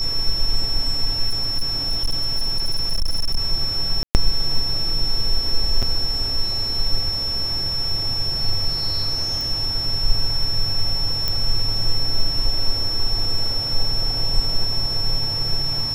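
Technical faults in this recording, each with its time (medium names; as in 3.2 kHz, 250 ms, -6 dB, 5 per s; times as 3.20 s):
whine 5.4 kHz -22 dBFS
1.29–3.38 s: clipped -15 dBFS
4.03–4.15 s: dropout 119 ms
5.82–5.83 s: dropout 6.4 ms
9.41 s: pop
11.28 s: pop -8 dBFS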